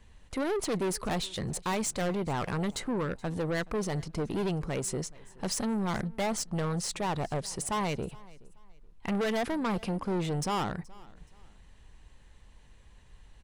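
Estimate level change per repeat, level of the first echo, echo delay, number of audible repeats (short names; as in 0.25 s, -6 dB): -10.5 dB, -23.0 dB, 0.424 s, 2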